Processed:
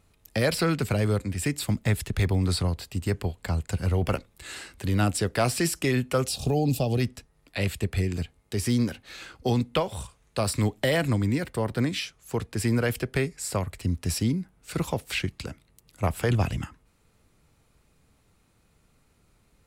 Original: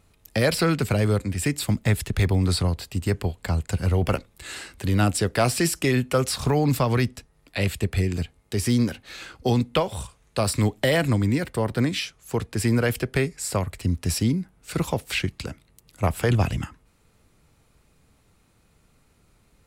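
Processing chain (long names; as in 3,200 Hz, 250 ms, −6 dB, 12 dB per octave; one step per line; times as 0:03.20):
gain on a spectral selection 0:06.27–0:07.01, 840–2,400 Hz −17 dB
level −3 dB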